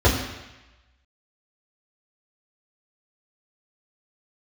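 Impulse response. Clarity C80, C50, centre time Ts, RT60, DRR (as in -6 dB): 7.0 dB, 5.5 dB, 40 ms, 1.0 s, -7.5 dB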